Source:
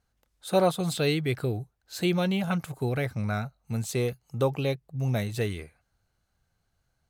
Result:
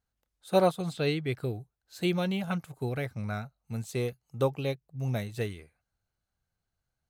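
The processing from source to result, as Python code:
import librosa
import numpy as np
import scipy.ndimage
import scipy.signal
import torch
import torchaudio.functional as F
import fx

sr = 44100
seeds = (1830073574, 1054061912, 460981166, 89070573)

y = fx.high_shelf(x, sr, hz=7900.0, db=-10.5, at=(0.82, 1.32))
y = fx.upward_expand(y, sr, threshold_db=-38.0, expansion=1.5)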